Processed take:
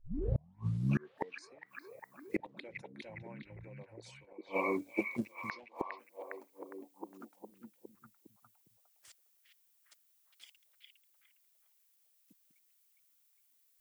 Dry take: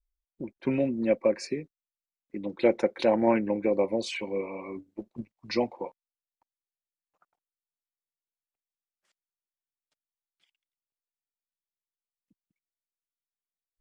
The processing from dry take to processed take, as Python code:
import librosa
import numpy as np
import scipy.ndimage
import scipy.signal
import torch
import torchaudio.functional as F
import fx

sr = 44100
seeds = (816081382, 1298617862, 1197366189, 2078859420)

p1 = fx.tape_start_head(x, sr, length_s=1.51)
p2 = fx.riaa(p1, sr, side='recording')
p3 = fx.gate_flip(p2, sr, shuts_db=-29.0, range_db=-36)
p4 = p3 + fx.echo_stepped(p3, sr, ms=408, hz=2500.0, octaves=-0.7, feedback_pct=70, wet_db=-1.0, dry=0)
y = p4 * librosa.db_to_amplitude(9.0)